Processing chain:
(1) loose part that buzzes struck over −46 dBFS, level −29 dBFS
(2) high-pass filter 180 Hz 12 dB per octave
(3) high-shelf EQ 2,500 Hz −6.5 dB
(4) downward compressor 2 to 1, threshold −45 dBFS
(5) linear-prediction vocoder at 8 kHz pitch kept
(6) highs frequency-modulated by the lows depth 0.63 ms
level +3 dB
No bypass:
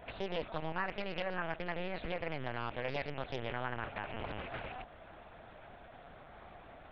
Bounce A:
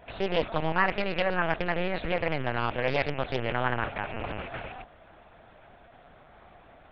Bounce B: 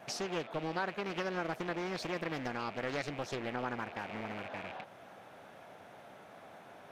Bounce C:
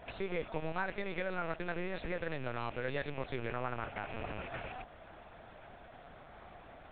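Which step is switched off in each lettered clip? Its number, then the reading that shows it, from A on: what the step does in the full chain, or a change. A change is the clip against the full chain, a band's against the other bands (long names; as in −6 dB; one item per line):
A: 4, average gain reduction 6.0 dB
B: 5, 250 Hz band +3.0 dB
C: 6, 4 kHz band −5.0 dB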